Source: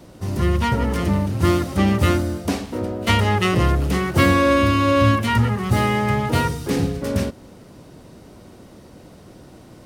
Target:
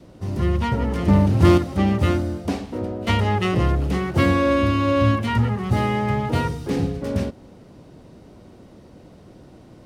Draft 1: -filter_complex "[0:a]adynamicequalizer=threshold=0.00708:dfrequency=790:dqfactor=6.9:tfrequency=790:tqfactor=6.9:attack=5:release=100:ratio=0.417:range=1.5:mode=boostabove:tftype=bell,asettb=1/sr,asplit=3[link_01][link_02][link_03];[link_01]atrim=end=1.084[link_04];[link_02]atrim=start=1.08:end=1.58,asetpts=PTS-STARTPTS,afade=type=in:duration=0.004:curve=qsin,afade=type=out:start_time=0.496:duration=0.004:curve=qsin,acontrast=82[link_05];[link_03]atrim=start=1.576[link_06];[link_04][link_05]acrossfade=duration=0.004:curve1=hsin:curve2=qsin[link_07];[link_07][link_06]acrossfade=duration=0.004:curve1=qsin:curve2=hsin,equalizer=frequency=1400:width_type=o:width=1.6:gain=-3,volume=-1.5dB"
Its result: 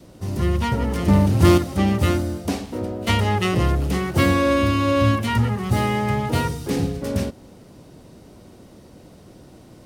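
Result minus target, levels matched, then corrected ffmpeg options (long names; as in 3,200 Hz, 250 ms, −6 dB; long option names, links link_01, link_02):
4,000 Hz band +3.0 dB
-filter_complex "[0:a]adynamicequalizer=threshold=0.00708:dfrequency=790:dqfactor=6.9:tfrequency=790:tqfactor=6.9:attack=5:release=100:ratio=0.417:range=1.5:mode=boostabove:tftype=bell,asettb=1/sr,asplit=3[link_01][link_02][link_03];[link_01]atrim=end=1.084[link_04];[link_02]atrim=start=1.08:end=1.58,asetpts=PTS-STARTPTS,afade=type=in:duration=0.004:curve=qsin,afade=type=out:start_time=0.496:duration=0.004:curve=qsin,acontrast=82[link_05];[link_03]atrim=start=1.576[link_06];[link_04][link_05]acrossfade=duration=0.004:curve1=hsin:curve2=qsin[link_07];[link_07][link_06]acrossfade=duration=0.004:curve1=qsin:curve2=hsin,lowpass=frequency=3300:poles=1,equalizer=frequency=1400:width_type=o:width=1.6:gain=-3,volume=-1.5dB"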